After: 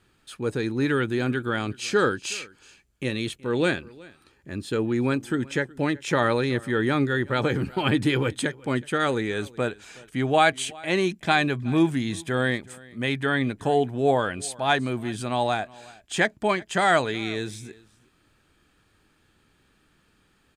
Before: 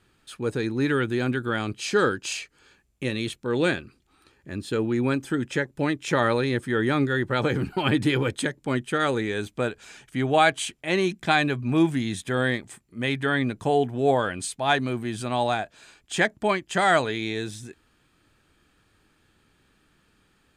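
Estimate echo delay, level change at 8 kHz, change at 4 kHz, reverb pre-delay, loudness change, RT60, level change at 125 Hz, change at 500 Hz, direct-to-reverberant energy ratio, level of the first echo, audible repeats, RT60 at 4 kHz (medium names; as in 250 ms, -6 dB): 371 ms, 0.0 dB, 0.0 dB, no reverb, 0.0 dB, no reverb, 0.0 dB, 0.0 dB, no reverb, -23.0 dB, 1, no reverb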